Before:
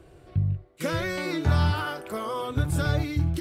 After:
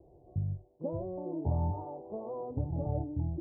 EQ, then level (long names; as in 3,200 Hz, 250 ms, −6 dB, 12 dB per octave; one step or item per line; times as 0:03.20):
Butterworth low-pass 900 Hz 72 dB per octave
low-shelf EQ 410 Hz −5 dB
−4.0 dB